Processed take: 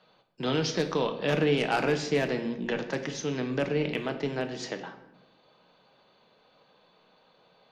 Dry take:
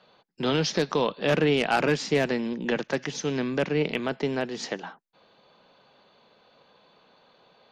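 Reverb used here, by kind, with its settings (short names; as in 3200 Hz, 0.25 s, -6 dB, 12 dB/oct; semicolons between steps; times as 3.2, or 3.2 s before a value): shoebox room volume 340 m³, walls mixed, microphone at 0.55 m; gain -4 dB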